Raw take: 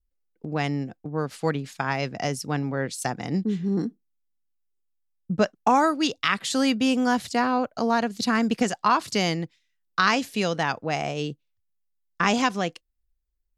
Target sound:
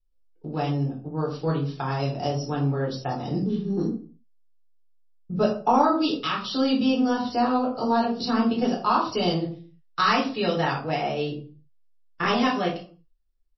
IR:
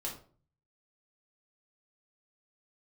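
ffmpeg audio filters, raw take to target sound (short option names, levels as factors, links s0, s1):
-filter_complex "[0:a]asetnsamples=n=441:p=0,asendcmd='9.44 equalizer g -2.5',equalizer=f=2000:t=o:w=0.49:g=-15[s0];[1:a]atrim=start_sample=2205,afade=t=out:st=0.4:d=0.01,atrim=end_sample=18081[s1];[s0][s1]afir=irnorm=-1:irlink=0" -ar 16000 -c:a libmp3lame -b:a 24k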